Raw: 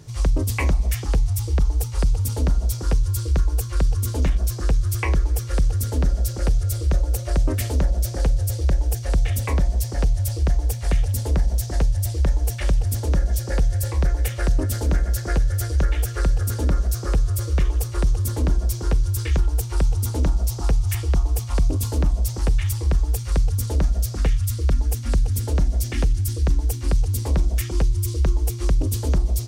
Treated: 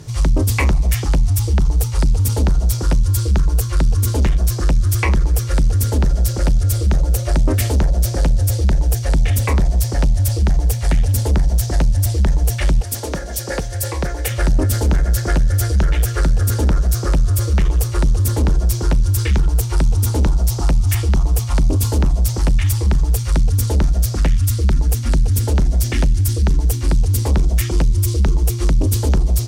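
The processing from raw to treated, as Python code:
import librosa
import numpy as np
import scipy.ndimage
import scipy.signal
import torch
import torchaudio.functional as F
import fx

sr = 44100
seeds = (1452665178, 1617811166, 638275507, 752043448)

y = fx.highpass(x, sr, hz=fx.line((12.8, 500.0), (14.29, 170.0)), slope=6, at=(12.8, 14.29), fade=0.02)
y = fx.fold_sine(y, sr, drive_db=4, ceiling_db=-10.0)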